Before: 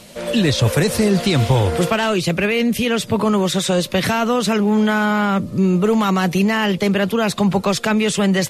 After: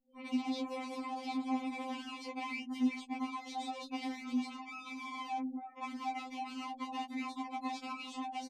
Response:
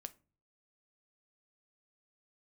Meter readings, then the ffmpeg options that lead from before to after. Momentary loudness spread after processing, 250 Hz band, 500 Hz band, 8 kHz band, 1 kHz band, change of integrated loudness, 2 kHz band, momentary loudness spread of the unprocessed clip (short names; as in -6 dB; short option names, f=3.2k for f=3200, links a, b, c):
7 LU, -21.0 dB, -32.0 dB, -29.0 dB, -16.5 dB, -22.0 dB, -23.0 dB, 2 LU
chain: -filter_complex "[0:a]lowshelf=f=430:g=6.5,aeval=exprs='(tanh(6.31*val(0)+0.1)-tanh(0.1))/6.31':c=same,bass=f=250:g=-13,treble=f=4k:g=8,asplit=2[a][b];[b]adelay=23,volume=-5dB[c];[a][c]amix=inputs=2:normalize=0,acrusher=bits=4:dc=4:mix=0:aa=0.000001,bandreject=f=1.2k:w=11,acrossover=split=1400|4100[d][e][f];[d]acompressor=threshold=-24dB:ratio=4[g];[e]acompressor=threshold=-38dB:ratio=4[h];[f]acompressor=threshold=-25dB:ratio=4[i];[g][h][i]amix=inputs=3:normalize=0,afftfilt=real='re*gte(hypot(re,im),0.0224)':imag='im*gte(hypot(re,im),0.0224)':win_size=1024:overlap=0.75,acrossover=split=7900[j][k];[k]acompressor=threshold=-41dB:ratio=4:attack=1:release=60[l];[j][l]amix=inputs=2:normalize=0,asplit=3[m][n][o];[m]bandpass=f=300:t=q:w=8,volume=0dB[p];[n]bandpass=f=870:t=q:w=8,volume=-6dB[q];[o]bandpass=f=2.24k:t=q:w=8,volume=-9dB[r];[p][q][r]amix=inputs=3:normalize=0,afftfilt=real='re*3.46*eq(mod(b,12),0)':imag='im*3.46*eq(mod(b,12),0)':win_size=2048:overlap=0.75,volume=7dB"